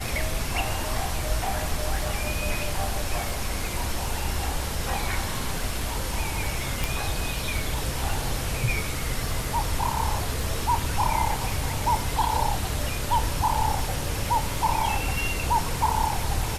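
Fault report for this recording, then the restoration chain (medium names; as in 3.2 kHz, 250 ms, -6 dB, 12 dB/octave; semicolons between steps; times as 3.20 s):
crackle 21 per s -33 dBFS
6.84 s: pop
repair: de-click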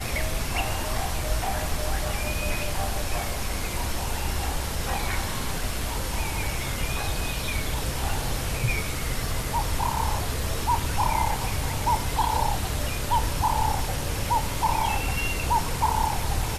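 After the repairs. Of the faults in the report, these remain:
nothing left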